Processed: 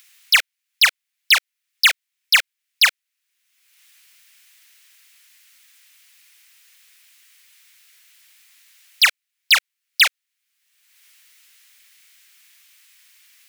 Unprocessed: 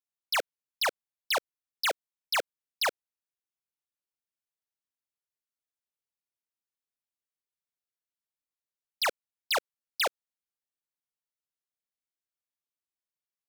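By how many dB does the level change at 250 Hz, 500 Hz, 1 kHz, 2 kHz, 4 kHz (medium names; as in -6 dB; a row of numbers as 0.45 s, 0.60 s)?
under -15 dB, -9.5 dB, +3.0 dB, +16.0 dB, +15.0 dB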